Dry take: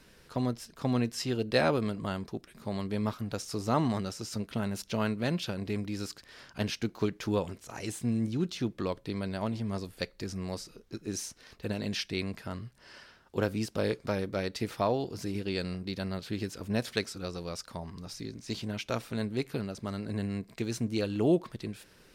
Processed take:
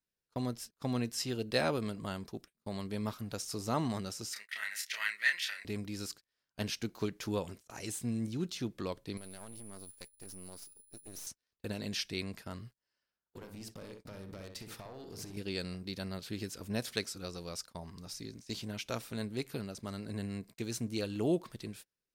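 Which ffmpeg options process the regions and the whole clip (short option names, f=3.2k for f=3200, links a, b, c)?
-filter_complex "[0:a]asettb=1/sr,asplit=3[a][b][c];[a]atrim=end=4.334[d];[b]atrim=start=4.33:end=5.65,asetpts=PTS-STARTPTS,afade=t=in:d=0.004:c=qsin,afade=t=out:st=1.316:d=0.004:c=qsin,highpass=f=1.9k:t=q:w=12,asplit=2[e][f];[f]adelay=29,volume=-4.5dB[g];[e][g]amix=inputs=2:normalize=0,atrim=end_sample=58212[h];[c]atrim=start=5.646[i];[d][h]acrossfade=d=0.004:c1=hsin:c2=qsin[j];[j][i]acrossfade=d=0.004:c1=qsin:c2=hsin,asettb=1/sr,asplit=3[k][l][m];[k]atrim=end=9.174[n];[l]atrim=start=9.17:end=11.27,asetpts=PTS-STARTPTS,afade=t=in:d=0.004:c=qsin,afade=t=out:st=2.096:d=0.004:c=qsin,aeval=exprs='val(0)+0.00708*sin(2*PI*10000*n/s)':c=same,acompressor=threshold=-38dB:ratio=4:attack=3.2:release=140:knee=1:detection=peak,aeval=exprs='max(val(0),0)':c=same[o];[m]atrim=start=11.266[p];[n][o]acrossfade=d=0.004:c1=hsin:c2=qsin[q];[q][p]acrossfade=d=0.004:c1=qsin:c2=hsin,asettb=1/sr,asplit=3[r][s][t];[r]atrim=end=12.964[u];[s]atrim=start=12.96:end=15.37,asetpts=PTS-STARTPTS,afade=t=in:d=0.004:c=qsin,afade=t=out:st=2.406:d=0.004:c=qsin,acompressor=threshold=-37dB:ratio=16:attack=3.2:release=140:knee=1:detection=peak,aeval=exprs='clip(val(0),-1,0.0119)':c=same,asplit=2[v][w];[w]adelay=62,lowpass=f=1.6k:p=1,volume=-4dB,asplit=2[x][y];[y]adelay=62,lowpass=f=1.6k:p=1,volume=0.37,asplit=2[z][aa];[aa]adelay=62,lowpass=f=1.6k:p=1,volume=0.37,asplit=2[ab][ac];[ac]adelay=62,lowpass=f=1.6k:p=1,volume=0.37,asplit=2[ad][ae];[ae]adelay=62,lowpass=f=1.6k:p=1,volume=0.37[af];[v][x][z][ab][ad][af]amix=inputs=6:normalize=0,atrim=end_sample=106281[ag];[t]atrim=start=15.366[ah];[u][ag]acrossfade=d=0.004:c1=hsin:c2=qsin[ai];[ai][ah]acrossfade=d=0.004:c1=qsin:c2=hsin,agate=range=-32dB:threshold=-45dB:ratio=16:detection=peak,highshelf=f=5.1k:g=9.5,volume=-5.5dB"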